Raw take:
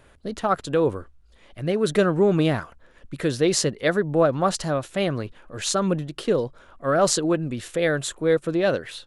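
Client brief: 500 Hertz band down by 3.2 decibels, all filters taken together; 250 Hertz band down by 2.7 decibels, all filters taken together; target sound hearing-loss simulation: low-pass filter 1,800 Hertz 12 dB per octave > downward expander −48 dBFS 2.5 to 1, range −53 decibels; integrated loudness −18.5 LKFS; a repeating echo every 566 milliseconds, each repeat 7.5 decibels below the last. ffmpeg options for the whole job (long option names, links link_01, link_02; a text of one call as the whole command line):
ffmpeg -i in.wav -af "lowpass=1800,equalizer=frequency=250:width_type=o:gain=-3,equalizer=frequency=500:width_type=o:gain=-3,aecho=1:1:566|1132|1698|2264|2830:0.422|0.177|0.0744|0.0312|0.0131,agate=range=-53dB:threshold=-48dB:ratio=2.5,volume=7.5dB" out.wav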